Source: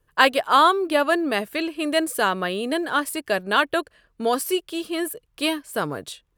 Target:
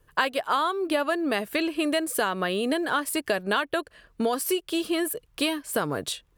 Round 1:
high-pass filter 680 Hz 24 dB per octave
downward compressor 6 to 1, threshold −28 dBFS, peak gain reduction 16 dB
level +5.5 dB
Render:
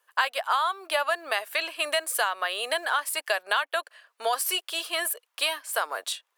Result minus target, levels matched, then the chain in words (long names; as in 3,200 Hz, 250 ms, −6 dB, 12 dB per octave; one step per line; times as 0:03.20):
500 Hz band −4.0 dB
downward compressor 6 to 1, threshold −28 dBFS, peak gain reduction 16.5 dB
level +5.5 dB